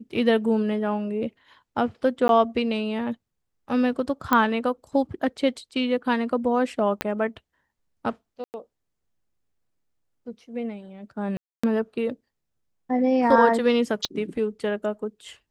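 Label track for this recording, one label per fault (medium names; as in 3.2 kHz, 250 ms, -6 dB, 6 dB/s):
2.280000	2.290000	dropout 12 ms
4.330000	4.330000	pop -7 dBFS
7.010000	7.010000	pop -9 dBFS
8.440000	8.540000	dropout 99 ms
11.370000	11.630000	dropout 265 ms
14.050000	14.050000	pop -14 dBFS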